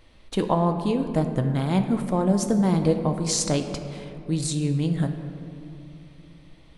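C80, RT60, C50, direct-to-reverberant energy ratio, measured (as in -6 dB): 9.0 dB, 2.9 s, 8.0 dB, 5.5 dB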